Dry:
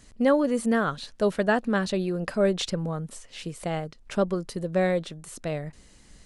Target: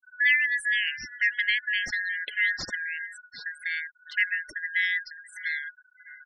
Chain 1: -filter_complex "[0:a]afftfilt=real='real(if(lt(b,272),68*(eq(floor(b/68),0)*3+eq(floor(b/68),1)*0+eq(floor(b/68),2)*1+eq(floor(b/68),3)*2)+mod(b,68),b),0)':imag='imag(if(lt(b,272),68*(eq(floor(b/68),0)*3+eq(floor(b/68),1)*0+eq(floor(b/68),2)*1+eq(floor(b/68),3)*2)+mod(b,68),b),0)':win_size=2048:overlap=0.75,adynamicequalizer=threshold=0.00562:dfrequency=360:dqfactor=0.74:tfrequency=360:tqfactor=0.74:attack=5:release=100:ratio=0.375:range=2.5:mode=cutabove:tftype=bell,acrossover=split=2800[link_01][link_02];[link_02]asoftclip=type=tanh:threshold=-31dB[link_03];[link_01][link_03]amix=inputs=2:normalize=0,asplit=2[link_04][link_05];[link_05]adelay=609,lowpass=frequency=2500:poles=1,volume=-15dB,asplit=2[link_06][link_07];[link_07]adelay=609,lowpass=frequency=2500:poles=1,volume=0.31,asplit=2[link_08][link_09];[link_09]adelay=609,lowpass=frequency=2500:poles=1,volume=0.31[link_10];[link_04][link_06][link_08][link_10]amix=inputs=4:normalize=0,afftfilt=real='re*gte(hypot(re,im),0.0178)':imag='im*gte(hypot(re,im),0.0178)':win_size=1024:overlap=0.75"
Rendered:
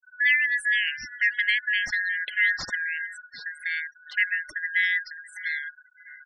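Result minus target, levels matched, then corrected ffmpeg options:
500 Hz band −3.5 dB
-filter_complex "[0:a]afftfilt=real='real(if(lt(b,272),68*(eq(floor(b/68),0)*3+eq(floor(b/68),1)*0+eq(floor(b/68),2)*1+eq(floor(b/68),3)*2)+mod(b,68),b),0)':imag='imag(if(lt(b,272),68*(eq(floor(b/68),0)*3+eq(floor(b/68),1)*0+eq(floor(b/68),2)*1+eq(floor(b/68),3)*2)+mod(b,68),b),0)':win_size=2048:overlap=0.75,adynamicequalizer=threshold=0.00562:dfrequency=1200:dqfactor=0.74:tfrequency=1200:tqfactor=0.74:attack=5:release=100:ratio=0.375:range=2.5:mode=cutabove:tftype=bell,acrossover=split=2800[link_01][link_02];[link_02]asoftclip=type=tanh:threshold=-31dB[link_03];[link_01][link_03]amix=inputs=2:normalize=0,asplit=2[link_04][link_05];[link_05]adelay=609,lowpass=frequency=2500:poles=1,volume=-15dB,asplit=2[link_06][link_07];[link_07]adelay=609,lowpass=frequency=2500:poles=1,volume=0.31,asplit=2[link_08][link_09];[link_09]adelay=609,lowpass=frequency=2500:poles=1,volume=0.31[link_10];[link_04][link_06][link_08][link_10]amix=inputs=4:normalize=0,afftfilt=real='re*gte(hypot(re,im),0.0178)':imag='im*gte(hypot(re,im),0.0178)':win_size=1024:overlap=0.75"

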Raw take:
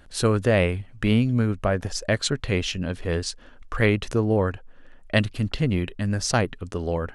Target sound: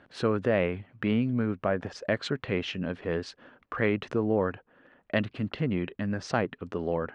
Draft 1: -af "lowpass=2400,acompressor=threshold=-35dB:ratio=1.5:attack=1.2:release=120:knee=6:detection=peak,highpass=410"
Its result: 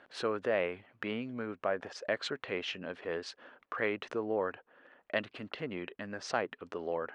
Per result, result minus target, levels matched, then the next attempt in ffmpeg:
125 Hz band −11.0 dB; downward compressor: peak gain reduction +3.5 dB
-af "lowpass=2400,acompressor=threshold=-35dB:ratio=1.5:attack=1.2:release=120:knee=6:detection=peak,highpass=160"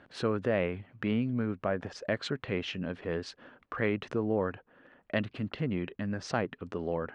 downward compressor: peak gain reduction +3.5 dB
-af "lowpass=2400,acompressor=threshold=-24.5dB:ratio=1.5:attack=1.2:release=120:knee=6:detection=peak,highpass=160"

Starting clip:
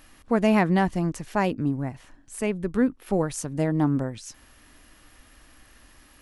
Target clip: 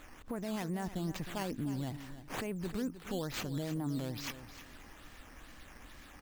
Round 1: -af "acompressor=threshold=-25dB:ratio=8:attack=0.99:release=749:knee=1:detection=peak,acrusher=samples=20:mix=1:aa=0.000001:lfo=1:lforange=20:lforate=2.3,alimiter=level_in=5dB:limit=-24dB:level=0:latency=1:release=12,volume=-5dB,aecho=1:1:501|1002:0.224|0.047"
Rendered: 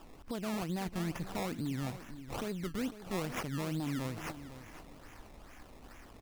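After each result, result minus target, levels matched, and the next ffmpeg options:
echo 191 ms late; sample-and-hold swept by an LFO: distortion +6 dB
-af "acompressor=threshold=-25dB:ratio=8:attack=0.99:release=749:knee=1:detection=peak,acrusher=samples=20:mix=1:aa=0.000001:lfo=1:lforange=20:lforate=2.3,alimiter=level_in=5dB:limit=-24dB:level=0:latency=1:release=12,volume=-5dB,aecho=1:1:310|620:0.224|0.047"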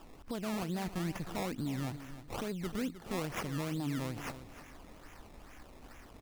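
sample-and-hold swept by an LFO: distortion +6 dB
-af "acompressor=threshold=-25dB:ratio=8:attack=0.99:release=749:knee=1:detection=peak,acrusher=samples=8:mix=1:aa=0.000001:lfo=1:lforange=8:lforate=2.3,alimiter=level_in=5dB:limit=-24dB:level=0:latency=1:release=12,volume=-5dB,aecho=1:1:310|620:0.224|0.047"

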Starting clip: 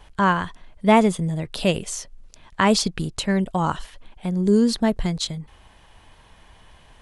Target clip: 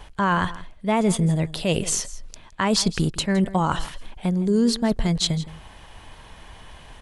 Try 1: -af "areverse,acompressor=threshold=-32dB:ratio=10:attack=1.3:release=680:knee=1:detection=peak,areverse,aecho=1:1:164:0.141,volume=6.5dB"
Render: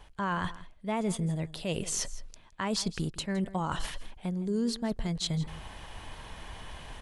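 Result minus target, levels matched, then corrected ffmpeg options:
downward compressor: peak gain reduction +10.5 dB
-af "areverse,acompressor=threshold=-20.5dB:ratio=10:attack=1.3:release=680:knee=1:detection=peak,areverse,aecho=1:1:164:0.141,volume=6.5dB"

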